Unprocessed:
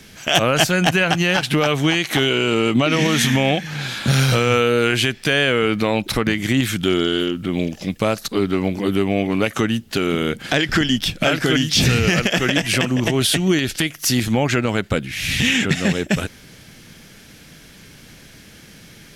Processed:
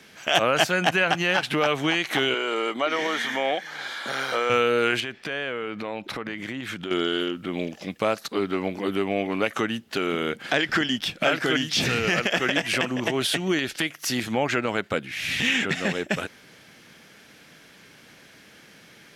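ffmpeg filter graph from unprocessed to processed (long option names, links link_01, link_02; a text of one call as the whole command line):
ffmpeg -i in.wav -filter_complex "[0:a]asettb=1/sr,asplit=3[link_01][link_02][link_03];[link_01]atrim=end=2.344[link_04];[link_02]atrim=start=2.34:end=4.5,asetpts=PTS-STARTPTS,afade=type=in:duration=0.004:curve=qsin,afade=type=out:start_time=2.156:duration=0.004:curve=qsin,acrossover=split=3400[link_05][link_06];[link_06]acompressor=threshold=-31dB:ratio=4:attack=1:release=60[link_07];[link_05][link_07]amix=inputs=2:normalize=0,highpass=410,bandreject=frequency=2600:width=5.1[link_08];[link_03]atrim=start=4.496[link_09];[link_04][link_08]acrossfade=duration=0.004:curve1=hsin:curve2=qsin[link_10];[link_10][link_09]acrossfade=duration=0.004:curve1=qsin:curve2=hsin,asettb=1/sr,asplit=3[link_11][link_12][link_13];[link_11]atrim=end=5.004[link_14];[link_12]atrim=start=5:end=6.91,asetpts=PTS-STARTPTS,afade=type=in:duration=0.004:curve=qsin,afade=type=out:start_time=1.906:duration=0.004:curve=qsin,aemphasis=mode=reproduction:type=cd,acompressor=threshold=-21dB:ratio=6:attack=3.2:release=140:knee=1:detection=peak[link_15];[link_13]atrim=start=6.906[link_16];[link_14][link_15]acrossfade=duration=0.004:curve1=hsin:curve2=qsin[link_17];[link_17][link_16]acrossfade=duration=0.004:curve1=qsin:curve2=hsin,highpass=frequency=600:poles=1,highshelf=frequency=3300:gain=-11" out.wav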